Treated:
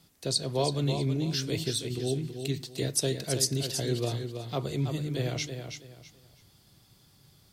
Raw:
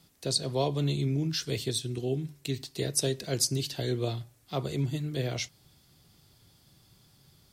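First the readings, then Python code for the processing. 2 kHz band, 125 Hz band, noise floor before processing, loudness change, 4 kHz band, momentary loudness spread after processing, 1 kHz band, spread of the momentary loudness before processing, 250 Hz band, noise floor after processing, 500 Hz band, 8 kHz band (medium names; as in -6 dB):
+1.0 dB, +0.5 dB, -63 dBFS, +0.5 dB, +1.0 dB, 7 LU, +0.5 dB, 8 LU, +1.0 dB, -62 dBFS, +1.0 dB, +1.0 dB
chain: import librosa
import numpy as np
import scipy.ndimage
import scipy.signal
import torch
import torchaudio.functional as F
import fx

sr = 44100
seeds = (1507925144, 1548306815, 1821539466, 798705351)

y = fx.echo_feedback(x, sr, ms=326, feedback_pct=26, wet_db=-7.5)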